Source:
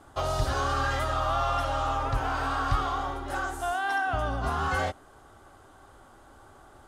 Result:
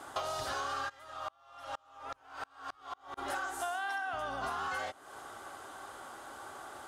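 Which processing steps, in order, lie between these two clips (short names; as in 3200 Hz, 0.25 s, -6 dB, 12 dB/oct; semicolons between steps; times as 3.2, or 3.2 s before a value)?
HPF 740 Hz 6 dB/oct; compressor 8:1, threshold -44 dBFS, peak gain reduction 17.5 dB; 0.88–3.17 dB-ramp tremolo swelling 1.5 Hz -> 5.2 Hz, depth 35 dB; gain +9.5 dB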